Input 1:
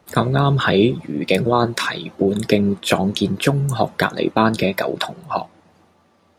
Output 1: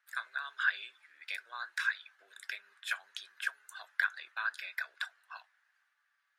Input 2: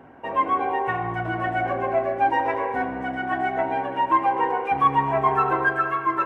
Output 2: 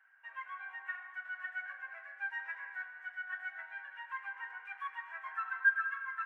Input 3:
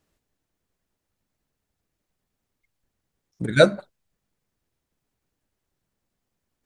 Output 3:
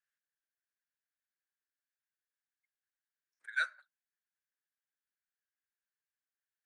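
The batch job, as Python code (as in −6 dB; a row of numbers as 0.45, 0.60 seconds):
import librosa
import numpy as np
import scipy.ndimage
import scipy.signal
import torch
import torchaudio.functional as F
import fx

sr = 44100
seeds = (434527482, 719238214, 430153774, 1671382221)

y = fx.ladder_highpass(x, sr, hz=1500.0, resonance_pct=75)
y = y * librosa.db_to_amplitude(-8.0)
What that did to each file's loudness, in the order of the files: −18.0, −15.5, −17.0 LU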